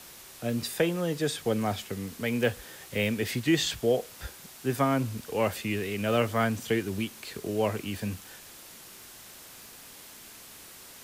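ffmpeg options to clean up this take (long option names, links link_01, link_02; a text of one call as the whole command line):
ffmpeg -i in.wav -af "adeclick=threshold=4,afwtdn=0.0045" out.wav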